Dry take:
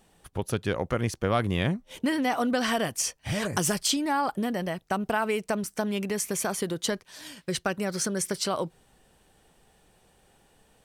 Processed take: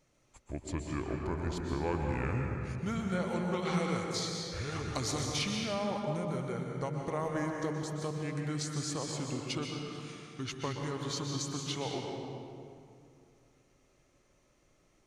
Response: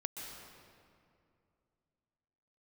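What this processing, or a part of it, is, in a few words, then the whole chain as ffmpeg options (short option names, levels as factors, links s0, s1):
slowed and reverbed: -filter_complex "[0:a]asetrate=31752,aresample=44100[s0];[1:a]atrim=start_sample=2205[s1];[s0][s1]afir=irnorm=-1:irlink=0,volume=0.447"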